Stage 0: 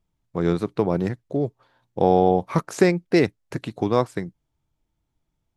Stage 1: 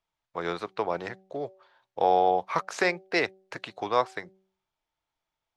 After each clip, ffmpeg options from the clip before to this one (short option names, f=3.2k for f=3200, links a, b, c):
-filter_complex "[0:a]acrossover=split=570 6000:gain=0.0891 1 0.158[a][b][c];[a][b][c]amix=inputs=3:normalize=0,bandreject=f=190.2:t=h:w=4,bandreject=f=380.4:t=h:w=4,bandreject=f=570.6:t=h:w=4,bandreject=f=760.8:t=h:w=4,volume=1.5dB"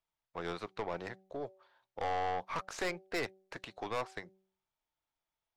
-af "aeval=exprs='(tanh(17.8*val(0)+0.4)-tanh(0.4))/17.8':c=same,volume=-5dB"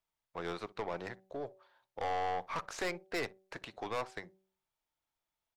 -filter_complex "[0:a]asplit=2[a][b];[b]volume=35.5dB,asoftclip=hard,volume=-35.5dB,volume=-10.5dB[c];[a][c]amix=inputs=2:normalize=0,asplit=2[d][e];[e]adelay=61,lowpass=f=890:p=1,volume=-19dB,asplit=2[f][g];[g]adelay=61,lowpass=f=890:p=1,volume=0.16[h];[d][f][h]amix=inputs=3:normalize=0,volume=-2dB"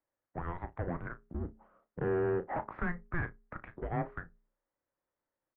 -filter_complex "[0:a]asplit=2[a][b];[b]adelay=34,volume=-12dB[c];[a][c]amix=inputs=2:normalize=0,highpass=f=240:t=q:w=0.5412,highpass=f=240:t=q:w=1.307,lowpass=f=2.2k:t=q:w=0.5176,lowpass=f=2.2k:t=q:w=0.7071,lowpass=f=2.2k:t=q:w=1.932,afreqshift=-350,volume=3dB"